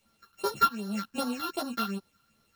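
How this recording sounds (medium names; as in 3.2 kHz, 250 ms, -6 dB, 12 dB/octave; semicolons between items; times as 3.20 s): a buzz of ramps at a fixed pitch in blocks of 32 samples; phasing stages 6, 2.6 Hz, lowest notch 550–2500 Hz; a quantiser's noise floor 12-bit, dither none; a shimmering, thickened sound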